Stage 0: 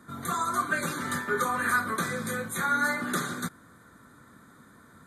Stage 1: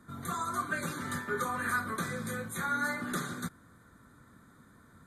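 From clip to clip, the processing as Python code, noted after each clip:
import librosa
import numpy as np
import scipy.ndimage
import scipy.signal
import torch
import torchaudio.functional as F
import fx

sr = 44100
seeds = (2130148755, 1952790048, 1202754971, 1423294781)

y = fx.low_shelf(x, sr, hz=110.0, db=11.0)
y = F.gain(torch.from_numpy(y), -6.0).numpy()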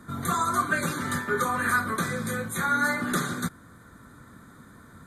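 y = fx.rider(x, sr, range_db=10, speed_s=2.0)
y = F.gain(torch.from_numpy(y), 7.0).numpy()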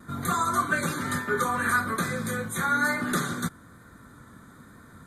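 y = fx.vibrato(x, sr, rate_hz=1.1, depth_cents=23.0)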